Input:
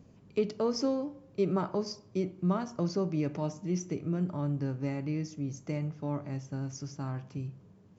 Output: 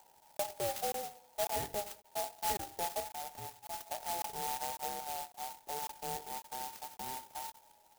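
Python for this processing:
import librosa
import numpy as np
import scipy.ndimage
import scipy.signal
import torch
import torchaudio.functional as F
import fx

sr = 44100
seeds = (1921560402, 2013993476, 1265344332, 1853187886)

y = fx.band_invert(x, sr, width_hz=1000)
y = fx.peak_eq(y, sr, hz=380.0, db=-12.5, octaves=2.0, at=(3.0, 3.87))
y = fx.lowpass(y, sr, hz=1200.0, slope=6, at=(5.03, 5.71))
y = fx.buffer_crackle(y, sr, first_s=0.37, period_s=0.55, block=1024, kind='zero')
y = fx.clock_jitter(y, sr, seeds[0], jitter_ms=0.13)
y = y * librosa.db_to_amplitude(-6.5)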